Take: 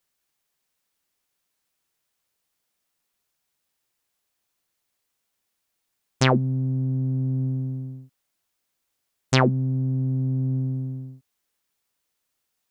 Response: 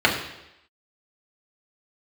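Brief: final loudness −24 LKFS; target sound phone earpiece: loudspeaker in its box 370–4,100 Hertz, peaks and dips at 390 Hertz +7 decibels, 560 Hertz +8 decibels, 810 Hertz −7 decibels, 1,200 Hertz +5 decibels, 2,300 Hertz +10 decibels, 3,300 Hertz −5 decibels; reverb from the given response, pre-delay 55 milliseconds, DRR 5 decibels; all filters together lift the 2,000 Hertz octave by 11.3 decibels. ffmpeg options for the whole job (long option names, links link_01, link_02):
-filter_complex "[0:a]equalizer=frequency=2000:width_type=o:gain=8,asplit=2[link_01][link_02];[1:a]atrim=start_sample=2205,adelay=55[link_03];[link_02][link_03]afir=irnorm=-1:irlink=0,volume=-25.5dB[link_04];[link_01][link_04]amix=inputs=2:normalize=0,highpass=370,equalizer=frequency=390:width_type=q:width=4:gain=7,equalizer=frequency=560:width_type=q:width=4:gain=8,equalizer=frequency=810:width_type=q:width=4:gain=-7,equalizer=frequency=1200:width_type=q:width=4:gain=5,equalizer=frequency=2300:width_type=q:width=4:gain=10,equalizer=frequency=3300:width_type=q:width=4:gain=-5,lowpass=frequency=4100:width=0.5412,lowpass=frequency=4100:width=1.3066,volume=-5.5dB"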